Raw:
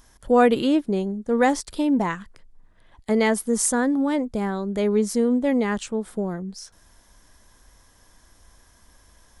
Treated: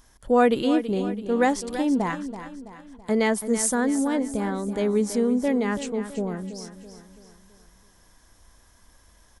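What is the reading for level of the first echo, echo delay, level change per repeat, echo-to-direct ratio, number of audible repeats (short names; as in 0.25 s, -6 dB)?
-11.5 dB, 0.33 s, -6.5 dB, -10.5 dB, 4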